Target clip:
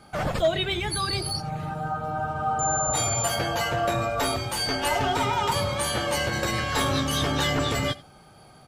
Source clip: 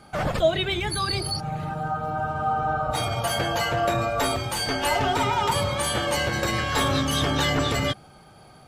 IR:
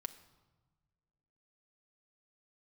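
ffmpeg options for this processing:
-filter_complex "[0:a]asettb=1/sr,asplit=3[a][b][c];[a]atrim=end=2.594[d];[b]atrim=start=2.59:end=3.28,asetpts=PTS-STARTPTS,afade=t=in:d=0.004:c=qsin,afade=t=out:st=0.686:d=0.004:c=qsin,aeval=exprs='val(0)+0.0398*sin(2*PI*7200*n/s)':c=same[e];[c]atrim=start=3.276[f];[d][e]acrossfade=d=0.004:c1=hsin:c2=qsin[g];[g][f]acrossfade=d=0.004:c1=qsin:c2=hsin,acrossover=split=3600[h][i];[h]volume=14dB,asoftclip=hard,volume=-14dB[j];[i]asplit=2[k][l];[l]adelay=15,volume=-3dB[m];[k][m]amix=inputs=2:normalize=0[n];[j][n]amix=inputs=2:normalize=0,aecho=1:1:87:0.0841,volume=-1.5dB"

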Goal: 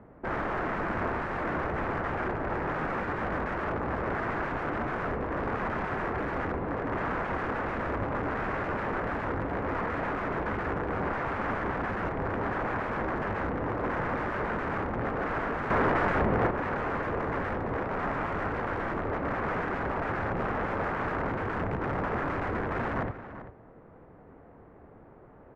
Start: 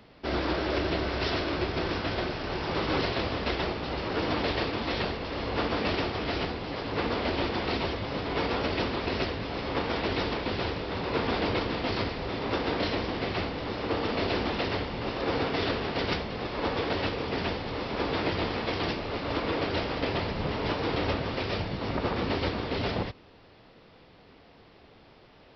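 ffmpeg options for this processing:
-filter_complex "[0:a]aeval=exprs='(mod(20*val(0)+1,2)-1)/20':c=same,adynamicsmooth=sensitivity=1.5:basefreq=1.3k,highshelf=f=2.5k:t=q:w=1.5:g=-13.5,asplit=2[a][b];[b]adelay=390.7,volume=-12dB,highshelf=f=4k:g=-8.79[c];[a][c]amix=inputs=2:normalize=0,asettb=1/sr,asplit=3[d][e][f];[d]atrim=end=15.704[g];[e]atrim=start=15.7:end=16.51,asetpts=PTS-STARTPTS,afade=t=in:d=0.004:c=qsin,afade=t=out:st=0.806:d=0.004:c=qsin,acontrast=62[h];[f]atrim=start=16.506[i];[g][h]acrossfade=d=0.004:c1=hsin:c2=qsin[j];[j][i]acrossfade=d=0.004:c1=qsin:c2=hsin,volume=3.5dB"

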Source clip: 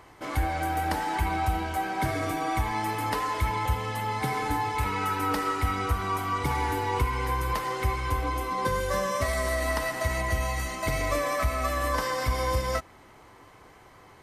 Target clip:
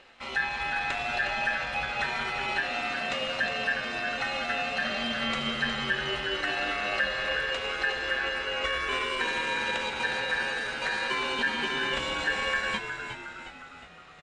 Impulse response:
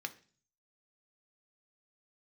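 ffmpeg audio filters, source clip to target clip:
-filter_complex "[0:a]lowpass=4.8k,aeval=exprs='val(0)*sin(2*PI*1500*n/s)':c=same,asetrate=49501,aresample=44100,atempo=0.890899,asplit=7[a][b][c][d][e][f][g];[b]adelay=361,afreqshift=-90,volume=-8dB[h];[c]adelay=722,afreqshift=-180,volume=-13.4dB[i];[d]adelay=1083,afreqshift=-270,volume=-18.7dB[j];[e]adelay=1444,afreqshift=-360,volume=-24.1dB[k];[f]adelay=1805,afreqshift=-450,volume=-29.4dB[l];[g]adelay=2166,afreqshift=-540,volume=-34.8dB[m];[a][h][i][j][k][l][m]amix=inputs=7:normalize=0" -ar 22050 -c:a aac -b:a 96k

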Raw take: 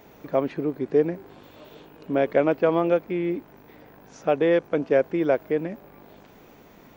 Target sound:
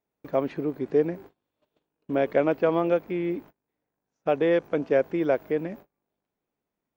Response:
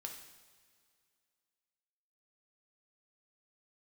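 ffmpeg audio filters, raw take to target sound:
-af "agate=range=-33dB:threshold=-41dB:ratio=16:detection=peak,volume=-2dB"

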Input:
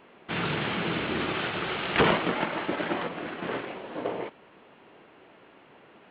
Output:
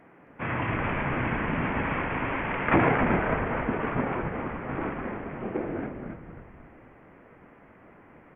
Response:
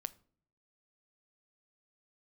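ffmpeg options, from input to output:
-filter_complex "[0:a]asplit=7[a][b][c][d][e][f][g];[b]adelay=197,afreqshift=-120,volume=-5dB[h];[c]adelay=394,afreqshift=-240,volume=-11.7dB[i];[d]adelay=591,afreqshift=-360,volume=-18.5dB[j];[e]adelay=788,afreqshift=-480,volume=-25.2dB[k];[f]adelay=985,afreqshift=-600,volume=-32dB[l];[g]adelay=1182,afreqshift=-720,volume=-38.7dB[m];[a][h][i][j][k][l][m]amix=inputs=7:normalize=0,asetrate=32193,aresample=44100"

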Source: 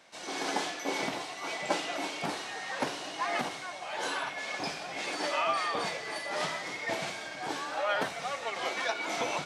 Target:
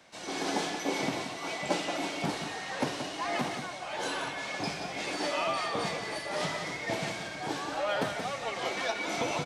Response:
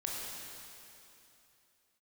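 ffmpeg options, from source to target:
-filter_complex "[0:a]lowshelf=f=200:g=11.5,aecho=1:1:178:0.376,acrossover=split=110|940|2000[a][b][c][d];[c]asoftclip=type=tanh:threshold=-39.5dB[e];[a][b][e][d]amix=inputs=4:normalize=0"

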